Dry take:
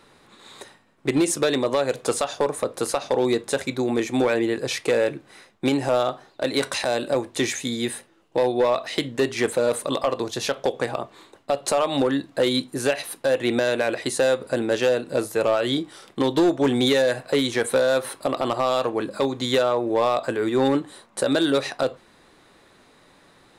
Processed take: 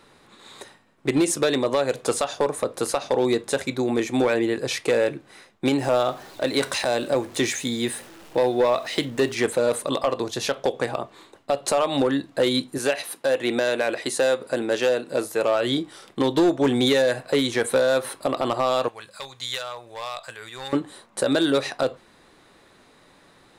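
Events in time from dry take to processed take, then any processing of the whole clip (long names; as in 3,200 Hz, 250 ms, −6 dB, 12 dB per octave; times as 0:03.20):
0:05.78–0:09.35: converter with a step at zero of −41 dBFS
0:12.78–0:15.55: high-pass filter 230 Hz 6 dB per octave
0:18.88–0:20.73: guitar amp tone stack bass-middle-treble 10-0-10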